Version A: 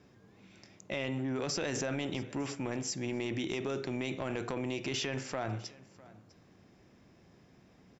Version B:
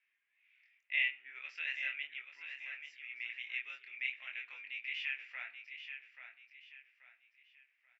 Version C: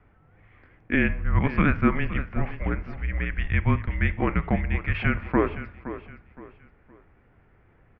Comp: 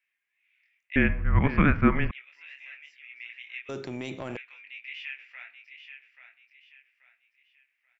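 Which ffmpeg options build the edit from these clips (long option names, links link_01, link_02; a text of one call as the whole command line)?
ffmpeg -i take0.wav -i take1.wav -i take2.wav -filter_complex "[1:a]asplit=3[link_01][link_02][link_03];[link_01]atrim=end=0.962[link_04];[2:a]atrim=start=0.958:end=2.112[link_05];[link_02]atrim=start=2.108:end=3.692[link_06];[0:a]atrim=start=3.688:end=4.372[link_07];[link_03]atrim=start=4.368[link_08];[link_04][link_05]acrossfade=duration=0.004:curve1=hsin:curve2=hsin[link_09];[link_09][link_06]acrossfade=duration=0.004:curve1=hsin:curve2=hsin[link_10];[link_10][link_07]acrossfade=duration=0.004:curve1=hsin:curve2=hsin[link_11];[link_11][link_08]acrossfade=duration=0.004:curve1=hsin:curve2=hsin" out.wav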